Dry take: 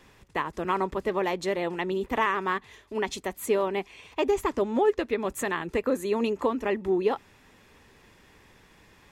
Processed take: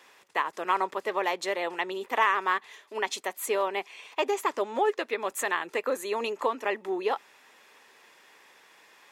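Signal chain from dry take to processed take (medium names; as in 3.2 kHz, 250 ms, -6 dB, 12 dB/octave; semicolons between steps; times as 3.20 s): high-pass 580 Hz 12 dB/octave; trim +2.5 dB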